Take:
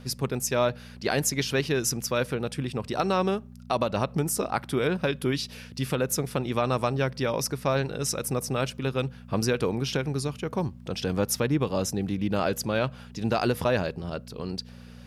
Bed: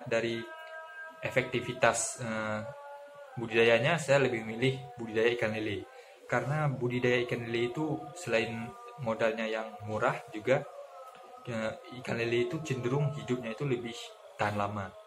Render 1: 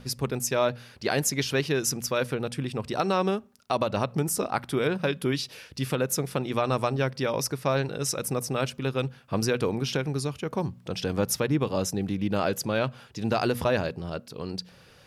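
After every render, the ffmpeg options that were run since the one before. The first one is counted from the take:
-af "bandreject=f=60:t=h:w=4,bandreject=f=120:t=h:w=4,bandreject=f=180:t=h:w=4,bandreject=f=240:t=h:w=4"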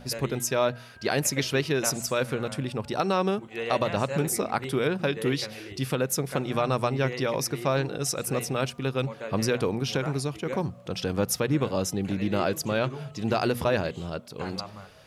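-filter_complex "[1:a]volume=0.398[s0];[0:a][s0]amix=inputs=2:normalize=0"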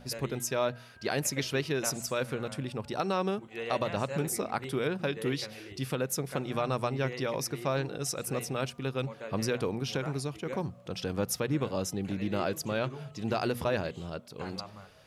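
-af "volume=0.562"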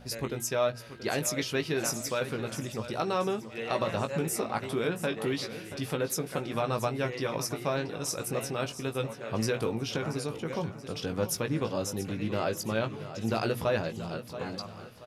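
-filter_complex "[0:a]asplit=2[s0][s1];[s1]adelay=18,volume=0.447[s2];[s0][s2]amix=inputs=2:normalize=0,aecho=1:1:680|1360|2040|2720:0.224|0.0895|0.0358|0.0143"

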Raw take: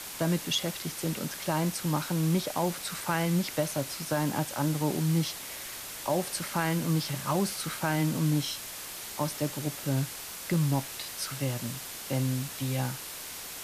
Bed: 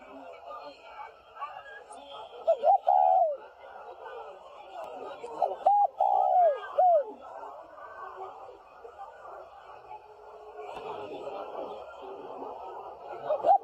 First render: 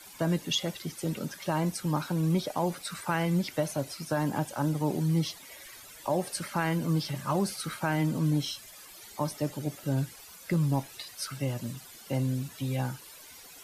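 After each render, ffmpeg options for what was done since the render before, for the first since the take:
-af "afftdn=nr=14:nf=-41"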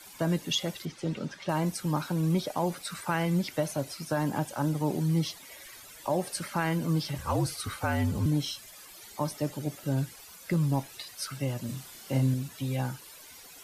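-filter_complex "[0:a]asettb=1/sr,asplit=3[s0][s1][s2];[s0]atrim=end=0.854[s3];[s1]atrim=start=0.85:end=1.49,asetpts=PTS-STARTPTS,afade=t=in:d=0.004:c=qsin,afade=t=out:st=0.636:d=0.004:c=qsin,lowpass=4900[s4];[s2]atrim=start=1.486[s5];[s3][s4]acrossfade=d=0.004:c1=hsin:c2=qsin[s6];[s6][s5]acrossfade=d=0.004:c1=qsin:c2=hsin,asettb=1/sr,asplit=3[s7][s8][s9];[s7]atrim=end=7.184[s10];[s8]atrim=start=7.18:end=8.26,asetpts=PTS-STARTPTS,afade=t=in:d=0.004:c=qsin,afade=t=out:st=1.076:d=0.004:c=qsin,afreqshift=-59[s11];[s9]atrim=start=8.256[s12];[s10][s11]acrossfade=d=0.004:c1=hsin:c2=qsin[s13];[s13][s12]acrossfade=d=0.004:c1=qsin:c2=hsin,asettb=1/sr,asplit=3[s14][s15][s16];[s14]atrim=end=11.664[s17];[s15]atrim=start=11.66:end=12.34,asetpts=PTS-STARTPTS,afade=t=in:d=0.004:c=qsin,afade=t=out:st=0.676:d=0.004:c=qsin,asplit=2[s18][s19];[s19]adelay=30,volume=0.668[s20];[s18][s20]amix=inputs=2:normalize=0,atrim=end_sample=29988[s21];[s16]atrim=start=12.336[s22];[s17][s21]acrossfade=d=0.004:c1=hsin:c2=qsin[s23];[s23][s22]acrossfade=d=0.004:c1=qsin:c2=hsin"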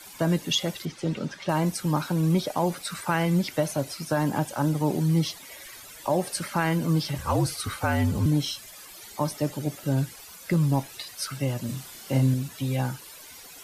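-af "volume=1.58"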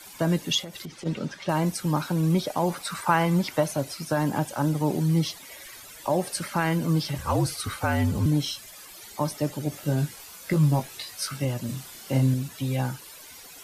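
-filter_complex "[0:a]asplit=3[s0][s1][s2];[s0]afade=t=out:st=0.61:d=0.02[s3];[s1]acompressor=threshold=0.0224:ratio=12:attack=3.2:release=140:knee=1:detection=peak,afade=t=in:st=0.61:d=0.02,afade=t=out:st=1.05:d=0.02[s4];[s2]afade=t=in:st=1.05:d=0.02[s5];[s3][s4][s5]amix=inputs=3:normalize=0,asettb=1/sr,asplit=3[s6][s7][s8];[s6]atrim=end=2.684[s9];[s7]atrim=start=2.68:end=3.64,asetpts=PTS-STARTPTS,afade=t=in:d=0.004:c=qsin,afade=t=out:st=0.956:d=0.004:c=qsin,equalizer=f=1000:t=o:w=0.93:g=7.5[s10];[s8]atrim=start=3.636[s11];[s9][s10]acrossfade=d=0.004:c1=hsin:c2=qsin[s12];[s12][s11]acrossfade=d=0.004:c1=qsin:c2=hsin,asettb=1/sr,asplit=3[s13][s14][s15];[s13]atrim=end=9.704[s16];[s14]atrim=start=9.7:end=11.45,asetpts=PTS-STARTPTS,afade=t=in:d=0.004:c=qsin,afade=t=out:st=1.746:d=0.004:c=qsin,asplit=2[s17][s18];[s18]adelay=20,volume=0.562[s19];[s17][s19]amix=inputs=2:normalize=0,atrim=end_sample=77175[s20];[s15]atrim=start=11.446[s21];[s16][s20]acrossfade=d=0.004:c1=hsin:c2=qsin[s22];[s22][s21]acrossfade=d=0.004:c1=qsin:c2=hsin"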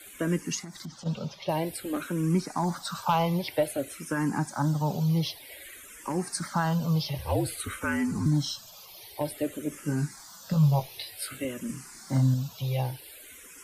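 -filter_complex "[0:a]asoftclip=type=hard:threshold=0.2,asplit=2[s0][s1];[s1]afreqshift=-0.53[s2];[s0][s2]amix=inputs=2:normalize=1"

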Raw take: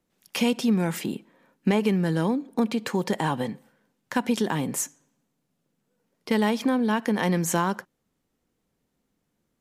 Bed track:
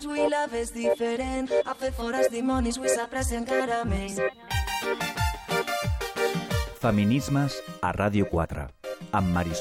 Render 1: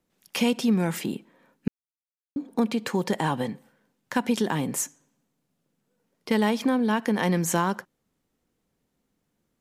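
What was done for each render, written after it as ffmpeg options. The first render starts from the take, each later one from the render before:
-filter_complex "[0:a]asplit=3[s0][s1][s2];[s0]atrim=end=1.68,asetpts=PTS-STARTPTS,afade=t=out:st=1.676:d=0.004:c=hsin[s3];[s1]atrim=start=1.68:end=2.36,asetpts=PTS-STARTPTS,volume=0[s4];[s2]atrim=start=2.36,asetpts=PTS-STARTPTS,afade=t=in:d=0.004:c=hsin[s5];[s3][s4][s5]concat=n=3:v=0:a=1"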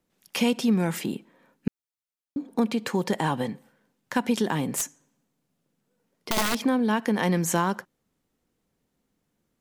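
-filter_complex "[0:a]asettb=1/sr,asplit=3[s0][s1][s2];[s0]atrim=end=4.704[s3];[s1]atrim=start=4.7:end=6.58,asetpts=PTS-STARTPTS,afade=t=in:d=0.004:c=qsin,afade=t=out:st=1.876:d=0.004:c=qsin,aeval=exprs='(mod(7.94*val(0)+1,2)-1)/7.94':c=same[s4];[s2]atrim=start=6.576[s5];[s3][s4]acrossfade=d=0.004:c1=hsin:c2=qsin[s6];[s6][s5]acrossfade=d=0.004:c1=qsin:c2=hsin"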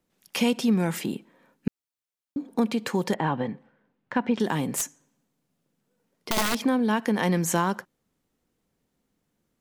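-filter_complex "[0:a]asettb=1/sr,asplit=3[s0][s1][s2];[s0]atrim=end=3.144[s3];[s1]atrim=start=3.14:end=4.4,asetpts=PTS-STARTPTS,afade=t=in:d=0.004:c=qsin,afade=t=out:st=1.256:d=0.004:c=qsin,lowpass=2400[s4];[s2]atrim=start=4.396[s5];[s3][s4]acrossfade=d=0.004:c1=hsin:c2=qsin[s6];[s6][s5]acrossfade=d=0.004:c1=qsin:c2=hsin"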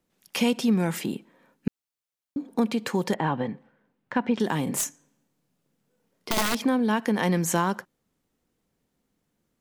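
-filter_complex "[0:a]asettb=1/sr,asplit=3[s0][s1][s2];[s0]atrim=end=4.644[s3];[s1]atrim=start=4.64:end=6.34,asetpts=PTS-STARTPTS,afade=t=in:d=0.004:c=qsin,afade=t=out:st=1.696:d=0.004:c=qsin,asplit=2[s4][s5];[s5]adelay=28,volume=0.562[s6];[s4][s6]amix=inputs=2:normalize=0,atrim=end_sample=74970[s7];[s2]atrim=start=6.336[s8];[s3][s7]acrossfade=d=0.004:c1=hsin:c2=qsin[s9];[s9][s8]acrossfade=d=0.004:c1=qsin:c2=hsin"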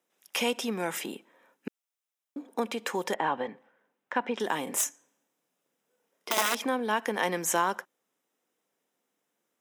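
-af "highpass=440,bandreject=f=4400:w=5.4"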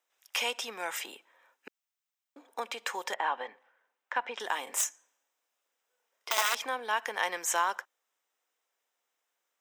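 -af "highpass=760,equalizer=f=11000:w=4.5:g=-13.5"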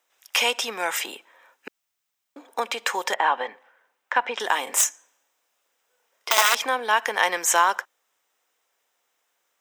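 -af "volume=2.99"

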